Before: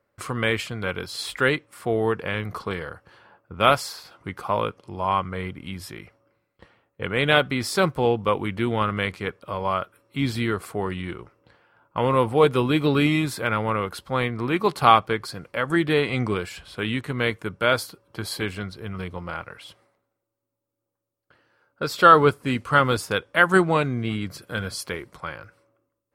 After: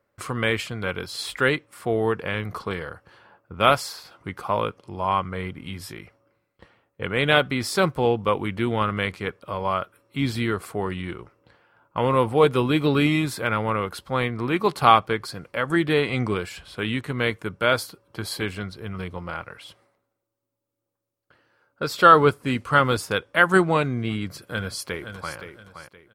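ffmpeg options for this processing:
ffmpeg -i in.wav -filter_complex "[0:a]asettb=1/sr,asplit=3[link_01][link_02][link_03];[link_01]atrim=end=5.524[link_04];[link_02]atrim=start=5.52:end=5.93,asetpts=PTS-STARTPTS,afade=type=in:duration=0.004:curve=qsin,afade=type=out:start_time=0.406:duration=0.004:curve=qsin,asplit=2[link_05][link_06];[link_06]adelay=19,volume=-8dB[link_07];[link_05][link_07]amix=inputs=2:normalize=0,atrim=end_sample=18081[link_08];[link_03]atrim=start=5.926[link_09];[link_04][link_08]acrossfade=duration=0.004:curve1=hsin:curve2=qsin[link_10];[link_10][link_09]acrossfade=duration=0.004:curve1=qsin:curve2=hsin,asplit=2[link_11][link_12];[link_12]afade=type=in:start_time=24.42:duration=0.01,afade=type=out:start_time=25.36:duration=0.01,aecho=0:1:520|1040|1560:0.334965|0.10049|0.0301469[link_13];[link_11][link_13]amix=inputs=2:normalize=0" out.wav

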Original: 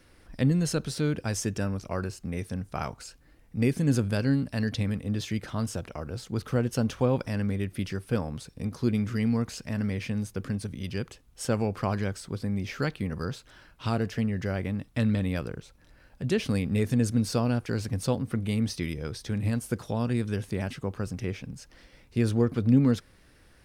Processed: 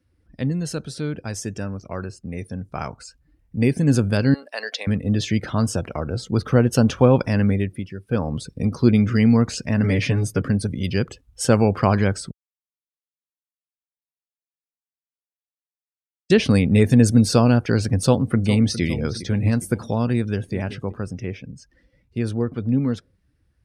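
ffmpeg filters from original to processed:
ffmpeg -i in.wav -filter_complex "[0:a]asettb=1/sr,asplit=3[link_01][link_02][link_03];[link_01]atrim=end=4.344[link_04];[link_02]atrim=start=4.34:end=4.87,asetpts=PTS-STARTPTS,afade=type=in:duration=0.004:curve=qsin,afade=type=out:start_time=0.526:duration=0.004:curve=qsin,highpass=frequency=520:width=0.5412,highpass=frequency=520:width=1.3066[link_05];[link_03]atrim=start=4.866[link_06];[link_04][link_05]acrossfade=duration=0.004:curve1=hsin:curve2=qsin[link_07];[link_07][link_06]acrossfade=duration=0.004:curve1=qsin:curve2=hsin,asettb=1/sr,asplit=3[link_08][link_09][link_10];[link_08]atrim=end=9.834[link_11];[link_09]atrim=start=9.83:end=10.42,asetpts=PTS-STARTPTS,afade=type=in:duration=0.004:curve=qsin,afade=type=out:start_time=0.586:duration=0.004:curve=qsin,aecho=1:1:7:0.99,atrim=end_sample=26019[link_12];[link_10]atrim=start=10.416[link_13];[link_11][link_12]acrossfade=duration=0.004:curve1=hsin:curve2=qsin[link_14];[link_14][link_13]acrossfade=duration=0.004:curve1=qsin:curve2=hsin,asplit=2[link_15][link_16];[link_16]afade=type=in:start_time=18.03:duration=0.01,afade=type=out:start_time=18.82:duration=0.01,aecho=0:1:410|820|1230|1640|2050|2460:0.237137|0.130426|0.0717341|0.0394537|0.0216996|0.0119348[link_17];[link_15][link_17]amix=inputs=2:normalize=0,asplit=2[link_18][link_19];[link_19]afade=type=in:start_time=20.13:duration=0.01,afade=type=out:start_time=20.54:duration=0.01,aecho=0:1:380|760:0.237137|0.0355706[link_20];[link_18][link_20]amix=inputs=2:normalize=0,asplit=5[link_21][link_22][link_23][link_24][link_25];[link_21]atrim=end=7.85,asetpts=PTS-STARTPTS,afade=type=out:start_time=7.5:duration=0.35:silence=0.281838[link_26];[link_22]atrim=start=7.85:end=8.01,asetpts=PTS-STARTPTS,volume=-11dB[link_27];[link_23]atrim=start=8.01:end=12.31,asetpts=PTS-STARTPTS,afade=type=in:duration=0.35:silence=0.281838,afade=type=out:start_time=4.296:duration=0.004:curve=hsin[link_28];[link_24]atrim=start=12.31:end=16.3,asetpts=PTS-STARTPTS,volume=0[link_29];[link_25]atrim=start=16.3,asetpts=PTS-STARTPTS,afade=type=in:duration=0.004:curve=hsin[link_30];[link_26][link_27][link_28][link_29][link_30]concat=n=5:v=0:a=1,afftdn=noise_reduction=18:noise_floor=-49,highpass=54,dynaudnorm=framelen=360:gausssize=21:maxgain=12.5dB" out.wav

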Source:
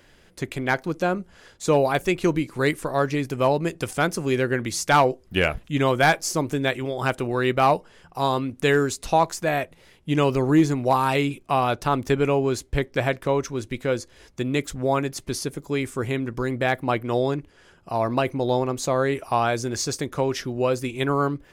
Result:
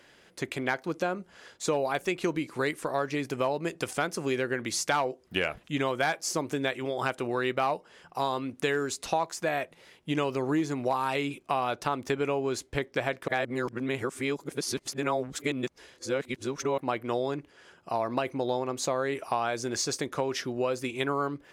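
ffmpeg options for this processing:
ffmpeg -i in.wav -filter_complex "[0:a]asplit=3[link_01][link_02][link_03];[link_01]atrim=end=13.282[link_04];[link_02]atrim=start=13.278:end=16.782,asetpts=PTS-STARTPTS,areverse[link_05];[link_03]atrim=start=16.778[link_06];[link_04][link_05]acrossfade=duration=0.004:curve1=hsin:curve2=hsin[link_07];[link_07][link_06]acrossfade=duration=0.004:curve1=hsin:curve2=hsin,highpass=frequency=310:poles=1,highshelf=frequency=12000:gain=-8.5,acompressor=threshold=-26dB:ratio=3" out.wav

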